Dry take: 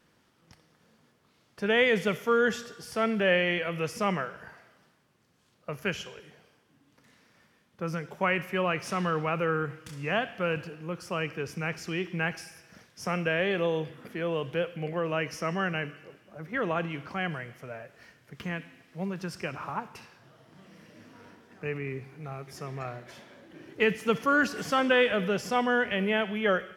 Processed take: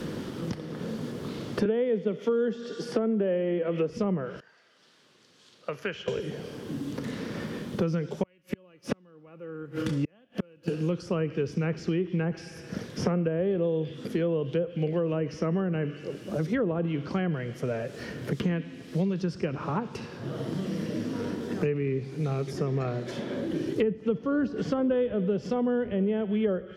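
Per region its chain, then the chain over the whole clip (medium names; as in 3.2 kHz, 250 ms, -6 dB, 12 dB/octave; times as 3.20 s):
1.65–3.90 s: high-pass 200 Hz 24 dB/octave + three bands compressed up and down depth 40%
4.40–6.08 s: low-pass 1.9 kHz + differentiator
8.23–10.68 s: peaking EQ 8.1 kHz -4.5 dB 1.3 oct + comb 3.5 ms, depth 35% + inverted gate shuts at -26 dBFS, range -40 dB
whole clip: low-pass that closes with the level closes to 1 kHz, closed at -24.5 dBFS; high-order bell 1.3 kHz -11.5 dB 2.3 oct; three bands compressed up and down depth 100%; trim +5 dB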